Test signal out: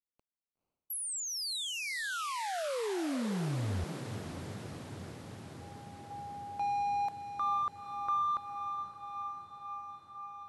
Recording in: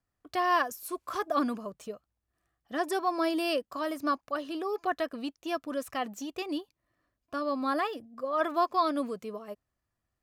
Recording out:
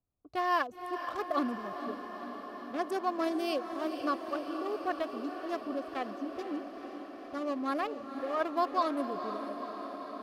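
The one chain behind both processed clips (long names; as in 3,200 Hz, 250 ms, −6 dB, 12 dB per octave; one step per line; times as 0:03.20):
adaptive Wiener filter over 25 samples
feedback delay with all-pass diffusion 490 ms, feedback 75%, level −9 dB
level −2.5 dB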